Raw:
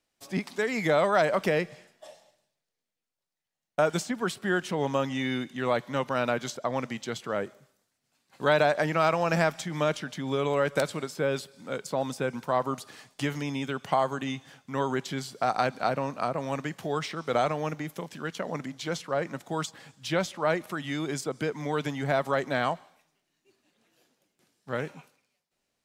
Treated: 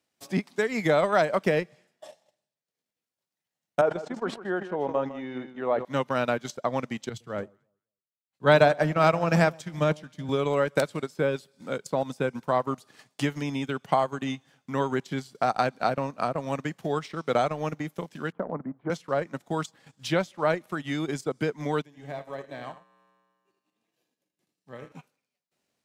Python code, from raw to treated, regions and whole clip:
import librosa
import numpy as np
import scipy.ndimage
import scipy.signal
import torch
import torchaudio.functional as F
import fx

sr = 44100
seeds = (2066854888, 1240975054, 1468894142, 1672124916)

y = fx.chain(x, sr, fx.bandpass_q(hz=640.0, q=0.96),
    fx.echo_single(ms=155, db=-9.5),
    fx.sustainer(db_per_s=67.0), at=(3.81, 5.85))
y = fx.chain(y, sr, fx.peak_eq(hz=64.0, db=12.5, octaves=1.8),
    fx.echo_alternate(ms=111, hz=970.0, feedback_pct=57, wet_db=-12.0),
    fx.band_widen(depth_pct=100), at=(7.09, 10.29))
y = fx.chain(y, sr, fx.cheby2_lowpass(hz=7100.0, order=4, stop_db=80),
    fx.low_shelf(hz=67.0, db=-10.5),
    fx.band_squash(depth_pct=40), at=(18.32, 18.9))
y = fx.chain(y, sr, fx.notch(hz=1400.0, q=5.5),
    fx.comb_fb(f0_hz=62.0, decay_s=1.6, harmonics='odd', damping=0.0, mix_pct=80),
    fx.echo_single(ms=80, db=-7.5), at=(21.82, 24.92))
y = scipy.signal.sosfilt(scipy.signal.butter(2, 100.0, 'highpass', fs=sr, output='sos'), y)
y = fx.low_shelf(y, sr, hz=420.0, db=3.0)
y = fx.transient(y, sr, attack_db=2, sustain_db=-11)